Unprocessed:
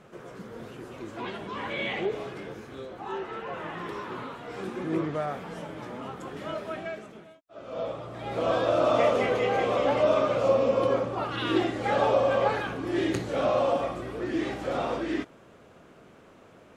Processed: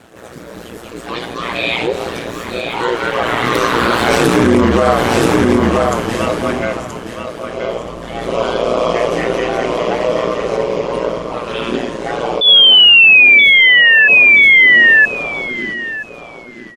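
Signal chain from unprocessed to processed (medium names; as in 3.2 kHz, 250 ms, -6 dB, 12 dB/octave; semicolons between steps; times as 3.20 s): Doppler pass-by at 4.36 s, 30 m/s, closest 5.4 m; treble shelf 4.3 kHz +10.5 dB; in parallel at -1 dB: compression, threshold -51 dBFS, peak gain reduction 22 dB; on the sum: ring modulator 59 Hz; painted sound fall, 12.41–14.08 s, 1.7–3.5 kHz -33 dBFS; on a send: feedback delay 976 ms, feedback 16%, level -7.5 dB; on the sum: loudness maximiser +35 dB; attacks held to a fixed rise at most 130 dB/s; trim -1 dB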